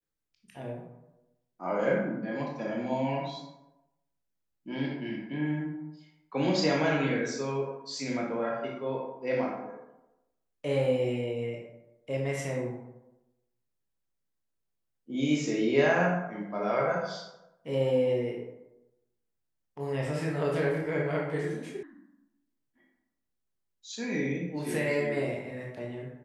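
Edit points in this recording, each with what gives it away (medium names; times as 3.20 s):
21.83 s: sound stops dead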